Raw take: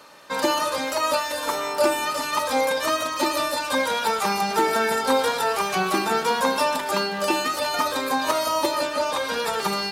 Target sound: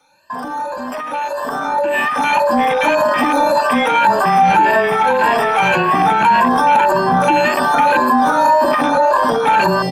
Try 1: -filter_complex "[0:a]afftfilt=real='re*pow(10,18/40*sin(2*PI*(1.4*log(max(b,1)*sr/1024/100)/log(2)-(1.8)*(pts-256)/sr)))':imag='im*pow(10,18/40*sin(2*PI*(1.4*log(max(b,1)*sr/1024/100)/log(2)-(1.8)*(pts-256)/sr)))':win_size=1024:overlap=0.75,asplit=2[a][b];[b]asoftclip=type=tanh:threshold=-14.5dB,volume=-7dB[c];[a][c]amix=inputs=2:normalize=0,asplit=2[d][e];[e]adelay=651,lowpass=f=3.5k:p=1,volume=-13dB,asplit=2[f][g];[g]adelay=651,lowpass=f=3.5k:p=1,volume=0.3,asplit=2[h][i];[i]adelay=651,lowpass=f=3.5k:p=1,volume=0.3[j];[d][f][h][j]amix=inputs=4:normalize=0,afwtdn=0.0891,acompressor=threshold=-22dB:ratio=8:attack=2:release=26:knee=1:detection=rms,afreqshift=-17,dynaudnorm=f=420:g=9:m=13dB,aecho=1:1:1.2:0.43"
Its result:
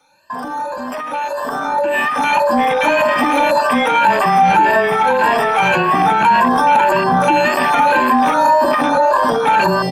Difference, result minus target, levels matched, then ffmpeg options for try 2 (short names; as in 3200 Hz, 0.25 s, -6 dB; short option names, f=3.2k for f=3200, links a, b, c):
soft clip: distortion -6 dB
-filter_complex "[0:a]afftfilt=real='re*pow(10,18/40*sin(2*PI*(1.4*log(max(b,1)*sr/1024/100)/log(2)-(1.8)*(pts-256)/sr)))':imag='im*pow(10,18/40*sin(2*PI*(1.4*log(max(b,1)*sr/1024/100)/log(2)-(1.8)*(pts-256)/sr)))':win_size=1024:overlap=0.75,asplit=2[a][b];[b]asoftclip=type=tanh:threshold=-21.5dB,volume=-7dB[c];[a][c]amix=inputs=2:normalize=0,asplit=2[d][e];[e]adelay=651,lowpass=f=3.5k:p=1,volume=-13dB,asplit=2[f][g];[g]adelay=651,lowpass=f=3.5k:p=1,volume=0.3,asplit=2[h][i];[i]adelay=651,lowpass=f=3.5k:p=1,volume=0.3[j];[d][f][h][j]amix=inputs=4:normalize=0,afwtdn=0.0891,acompressor=threshold=-22dB:ratio=8:attack=2:release=26:knee=1:detection=rms,afreqshift=-17,dynaudnorm=f=420:g=9:m=13dB,aecho=1:1:1.2:0.43"